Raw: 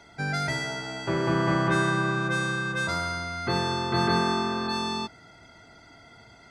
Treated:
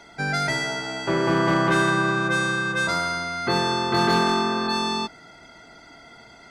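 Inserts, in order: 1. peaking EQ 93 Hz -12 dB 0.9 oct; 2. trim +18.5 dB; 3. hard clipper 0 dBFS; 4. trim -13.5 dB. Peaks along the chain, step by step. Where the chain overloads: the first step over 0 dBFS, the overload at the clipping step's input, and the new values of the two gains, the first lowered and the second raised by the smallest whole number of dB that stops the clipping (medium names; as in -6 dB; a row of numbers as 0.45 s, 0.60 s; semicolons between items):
-13.0 dBFS, +5.5 dBFS, 0.0 dBFS, -13.5 dBFS; step 2, 5.5 dB; step 2 +12.5 dB, step 4 -7.5 dB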